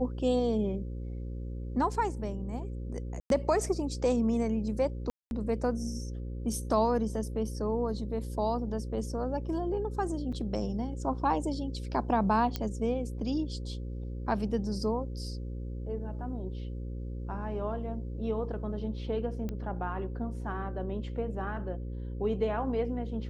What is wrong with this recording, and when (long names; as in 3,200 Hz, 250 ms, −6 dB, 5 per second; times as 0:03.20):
mains buzz 60 Hz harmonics 9 −37 dBFS
0:03.20–0:03.30: drop-out 102 ms
0:05.10–0:05.31: drop-out 211 ms
0:10.32–0:10.33: drop-out 5.4 ms
0:12.56: click −17 dBFS
0:19.49: click −24 dBFS